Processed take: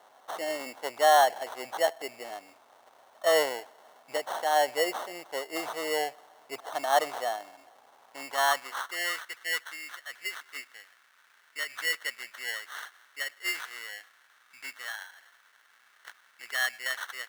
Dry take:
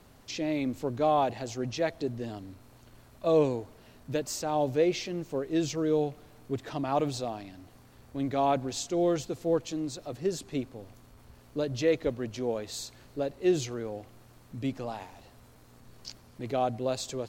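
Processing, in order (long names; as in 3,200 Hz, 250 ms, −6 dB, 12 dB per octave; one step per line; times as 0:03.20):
decimation without filtering 18×
high-pass filter sweep 730 Hz → 1,600 Hz, 0:07.89–0:09.29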